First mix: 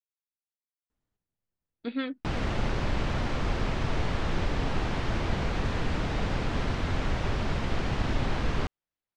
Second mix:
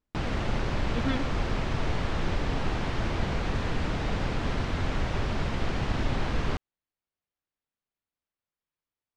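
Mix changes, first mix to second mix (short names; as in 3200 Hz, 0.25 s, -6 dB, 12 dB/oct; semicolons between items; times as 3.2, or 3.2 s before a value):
speech: entry -0.90 s; background: entry -2.10 s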